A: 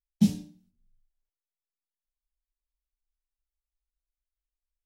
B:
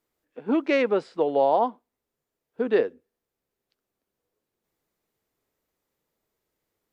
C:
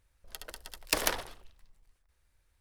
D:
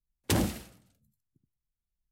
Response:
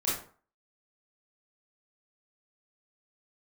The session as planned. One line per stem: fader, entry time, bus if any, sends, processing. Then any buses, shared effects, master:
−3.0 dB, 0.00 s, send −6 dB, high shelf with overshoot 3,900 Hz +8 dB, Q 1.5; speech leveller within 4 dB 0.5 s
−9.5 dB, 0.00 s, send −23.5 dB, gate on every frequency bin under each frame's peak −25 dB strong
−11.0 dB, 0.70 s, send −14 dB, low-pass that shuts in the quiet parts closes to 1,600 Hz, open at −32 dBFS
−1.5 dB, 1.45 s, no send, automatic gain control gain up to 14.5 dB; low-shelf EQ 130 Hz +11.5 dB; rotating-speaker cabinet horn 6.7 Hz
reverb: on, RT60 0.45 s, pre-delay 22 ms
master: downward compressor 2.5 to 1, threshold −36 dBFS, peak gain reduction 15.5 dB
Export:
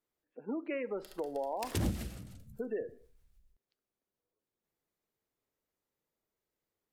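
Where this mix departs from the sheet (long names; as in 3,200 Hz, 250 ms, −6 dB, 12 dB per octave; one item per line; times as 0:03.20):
stem A: muted
stem C: missing low-pass that shuts in the quiet parts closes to 1,600 Hz, open at −32 dBFS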